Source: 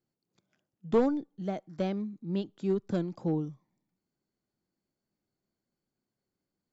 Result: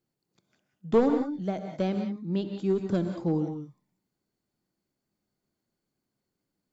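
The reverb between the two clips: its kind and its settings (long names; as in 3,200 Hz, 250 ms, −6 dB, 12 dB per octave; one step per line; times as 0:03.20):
reverb whose tail is shaped and stops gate 210 ms rising, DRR 5.5 dB
level +2.5 dB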